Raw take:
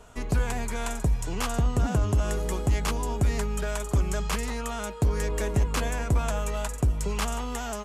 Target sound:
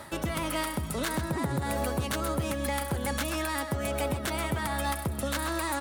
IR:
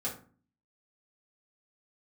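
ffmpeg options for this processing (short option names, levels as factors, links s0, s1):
-af "highpass=92,areverse,acompressor=mode=upward:threshold=0.0355:ratio=2.5,areverse,alimiter=limit=0.0708:level=0:latency=1:release=355,aecho=1:1:173:0.299,asetrate=59535,aresample=44100,volume=1.5"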